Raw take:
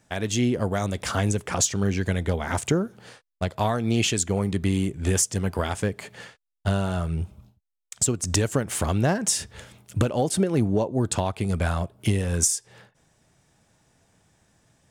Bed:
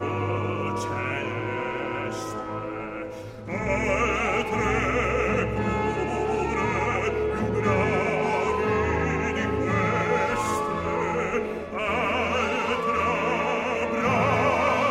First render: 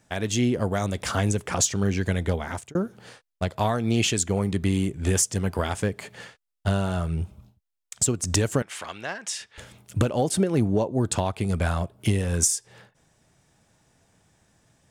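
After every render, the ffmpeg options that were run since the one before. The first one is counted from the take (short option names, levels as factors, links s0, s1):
-filter_complex "[0:a]asettb=1/sr,asplit=3[s0][s1][s2];[s0]atrim=end=8.624[s3];[s1]atrim=start=8.62:end=9.58,asetpts=PTS-STARTPTS,afade=t=in:d=0.004:c=qsin,afade=t=out:st=0.956:d=0.004:c=qsin,bandpass=f=2400:t=q:w=0.85[s4];[s2]atrim=start=9.576[s5];[s3][s4]acrossfade=d=0.004:c1=hsin:c2=qsin[s6];[s6][s5]acrossfade=d=0.004:c1=qsin:c2=hsin,asplit=2[s7][s8];[s7]atrim=end=2.75,asetpts=PTS-STARTPTS,afade=t=out:st=2.33:d=0.42[s9];[s8]atrim=start=2.75,asetpts=PTS-STARTPTS,afade=t=in:d=0.004:c=hsin[s10];[s9][s10]concat=n=2:v=0:a=1"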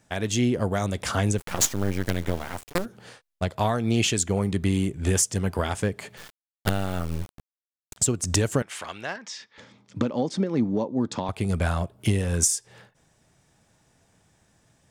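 -filter_complex "[0:a]asplit=3[s0][s1][s2];[s0]afade=t=out:st=1.37:d=0.02[s3];[s1]acrusher=bits=4:dc=4:mix=0:aa=0.000001,afade=t=in:st=1.37:d=0.02,afade=t=out:st=2.84:d=0.02[s4];[s2]afade=t=in:st=2.84:d=0.02[s5];[s3][s4][s5]amix=inputs=3:normalize=0,asettb=1/sr,asplit=3[s6][s7][s8];[s6]atrim=end=6.174[s9];[s7]atrim=start=6.17:end=7.97,asetpts=PTS-STARTPTS,afade=t=in:d=0.004:c=qsin,afade=t=out:st=1.796:d=0.004:c=qsin,acrusher=bits=4:dc=4:mix=0:aa=0.000001[s10];[s8]atrim=start=7.966[s11];[s9][s10]acrossfade=d=0.004:c1=hsin:c2=qsin[s12];[s12][s11]acrossfade=d=0.004:c1=qsin:c2=hsin,asettb=1/sr,asplit=3[s13][s14][s15];[s13]atrim=end=9.164[s16];[s14]atrim=start=9.16:end=11.29,asetpts=PTS-STARTPTS,afade=t=in:d=0.004:c=qsin,afade=t=out:st=2.126:d=0.004:c=qsin,highpass=190,equalizer=f=240:t=q:w=4:g=5,equalizer=f=390:t=q:w=4:g=-5,equalizer=f=680:t=q:w=4:g=-8,equalizer=f=1500:t=q:w=4:g=-6,equalizer=f=2800:t=q:w=4:g=-9,equalizer=f=4100:t=q:w=4:g=-3,lowpass=f=5400:w=0.5412,lowpass=f=5400:w=1.3066[s17];[s15]atrim=start=11.286[s18];[s16][s17]acrossfade=d=0.004:c1=hsin:c2=qsin[s19];[s19][s18]acrossfade=d=0.004:c1=qsin:c2=hsin"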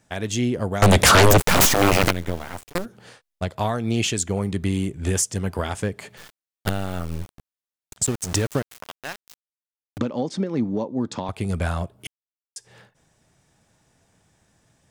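-filter_complex "[0:a]asettb=1/sr,asplit=3[s0][s1][s2];[s0]atrim=end=0.824[s3];[s1]atrim=start=0.82:end=2.11,asetpts=PTS-STARTPTS,afade=t=in:d=0.004:c=qsin,afade=t=out:st=1.286:d=0.004:c=qsin,aeval=exprs='0.355*sin(PI/2*6.31*val(0)/0.355)':c=same[s4];[s2]atrim=start=2.106[s5];[s3][s4]acrossfade=d=0.004:c1=hsin:c2=qsin[s6];[s6][s5]acrossfade=d=0.004:c1=qsin:c2=hsin,asettb=1/sr,asplit=3[s7][s8][s9];[s7]atrim=end=8.044[s10];[s8]atrim=start=8.04:end=9.98,asetpts=PTS-STARTPTS,afade=t=in:d=0.004:c=qsin,afade=t=out:st=1.936:d=0.004:c=qsin,aeval=exprs='val(0)*gte(abs(val(0)),0.0376)':c=same[s11];[s9]atrim=start=9.976[s12];[s10][s11]acrossfade=d=0.004:c1=hsin:c2=qsin[s13];[s13][s12]acrossfade=d=0.004:c1=qsin:c2=hsin,asplit=3[s14][s15][s16];[s14]atrim=end=12.07,asetpts=PTS-STARTPTS,afade=t=out:st=12.066:d=0.004:c=hsin[s17];[s15]atrim=start=12.07:end=12.56,asetpts=PTS-STARTPTS,volume=0[s18];[s16]atrim=start=12.56,asetpts=PTS-STARTPTS,afade=t=in:d=0.004:c=hsin[s19];[s17][s18][s19]concat=n=3:v=0:a=1"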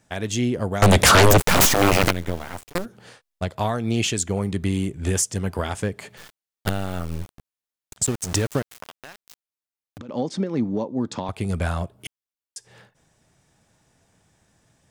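-filter_complex "[0:a]asettb=1/sr,asplit=3[s0][s1][s2];[s0]atrim=end=8.874[s3];[s1]atrim=start=8.87:end=10.09,asetpts=PTS-STARTPTS,afade=t=in:d=0.004:c=qsin,afade=t=out:st=1.216:d=0.004:c=qsin,acompressor=threshold=0.0158:ratio=6:attack=3.2:release=140:knee=1:detection=peak[s4];[s2]atrim=start=10.086[s5];[s3][s4]acrossfade=d=0.004:c1=hsin:c2=qsin[s6];[s6][s5]acrossfade=d=0.004:c1=qsin:c2=hsin"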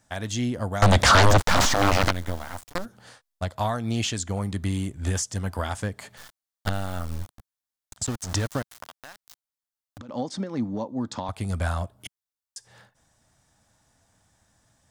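-filter_complex "[0:a]acrossover=split=6400[s0][s1];[s1]acompressor=threshold=0.0112:ratio=4:attack=1:release=60[s2];[s0][s2]amix=inputs=2:normalize=0,equalizer=f=160:t=o:w=0.67:g=-7,equalizer=f=400:t=o:w=0.67:g=-10,equalizer=f=2500:t=o:w=0.67:g=-6"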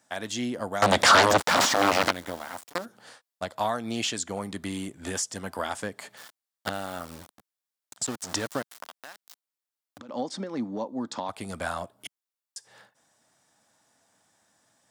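-af "highpass=250,bandreject=f=6300:w=25"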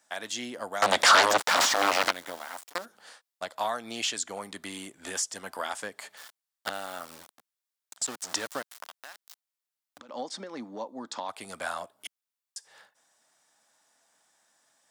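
-af "highpass=f=700:p=1"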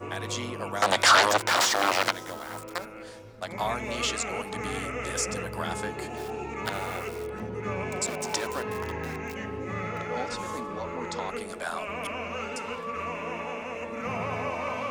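-filter_complex "[1:a]volume=0.335[s0];[0:a][s0]amix=inputs=2:normalize=0"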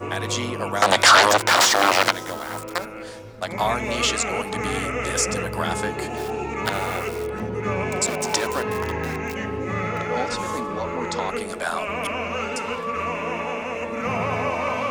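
-af "volume=2.24,alimiter=limit=0.708:level=0:latency=1"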